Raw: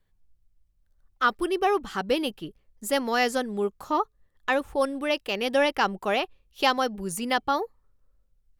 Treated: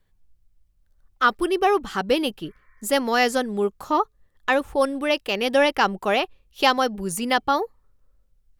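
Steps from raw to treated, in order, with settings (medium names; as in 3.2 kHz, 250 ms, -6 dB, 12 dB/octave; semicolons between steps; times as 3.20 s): spectral replace 2.45–2.79 s, 990–2400 Hz; trim +4 dB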